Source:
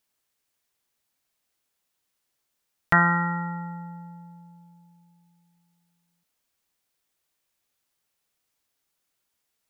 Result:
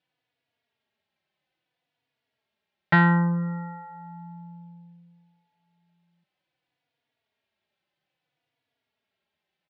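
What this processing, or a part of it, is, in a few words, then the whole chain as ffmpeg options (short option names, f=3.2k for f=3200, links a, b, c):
barber-pole flanger into a guitar amplifier: -filter_complex "[0:a]asplit=2[a][b];[b]adelay=3.5,afreqshift=-0.61[c];[a][c]amix=inputs=2:normalize=1,asoftclip=type=tanh:threshold=-15dB,highpass=92,equalizer=f=140:t=q:w=4:g=7,equalizer=f=680:t=q:w=4:g=4,equalizer=f=1.2k:t=q:w=4:g=-7,lowpass=f=3.6k:w=0.5412,lowpass=f=3.6k:w=1.3066,volume=5.5dB"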